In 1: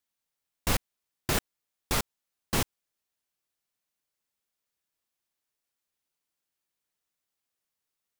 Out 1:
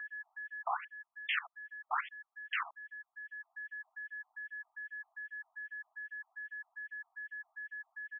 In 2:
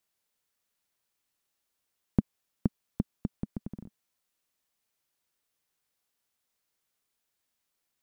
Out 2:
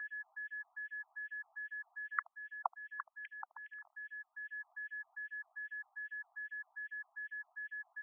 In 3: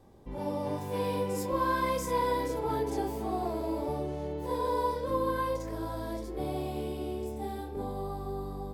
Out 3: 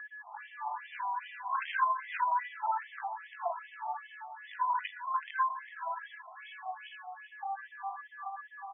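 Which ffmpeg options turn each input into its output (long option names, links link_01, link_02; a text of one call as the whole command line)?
ffmpeg -i in.wav -filter_complex "[0:a]aeval=exprs='val(0)+0.00251*sin(2*PI*1700*n/s)':channel_layout=same,aecho=1:1:78:0.133,acrossover=split=660[link_01][link_02];[link_01]acompressor=mode=upward:threshold=-42dB:ratio=2.5[link_03];[link_03][link_02]amix=inputs=2:normalize=0,aeval=exprs='0.0708*(abs(mod(val(0)/0.0708+3,4)-2)-1)':channel_layout=same,asplit=2[link_04][link_05];[link_05]acompressor=threshold=-41dB:ratio=6,volume=1dB[link_06];[link_04][link_06]amix=inputs=2:normalize=0,asubboost=boost=8.5:cutoff=130,afftfilt=real='re*between(b*sr/1024,880*pow(2500/880,0.5+0.5*sin(2*PI*2.5*pts/sr))/1.41,880*pow(2500/880,0.5+0.5*sin(2*PI*2.5*pts/sr))*1.41)':imag='im*between(b*sr/1024,880*pow(2500/880,0.5+0.5*sin(2*PI*2.5*pts/sr))/1.41,880*pow(2500/880,0.5+0.5*sin(2*PI*2.5*pts/sr))*1.41)':win_size=1024:overlap=0.75,volume=3.5dB" out.wav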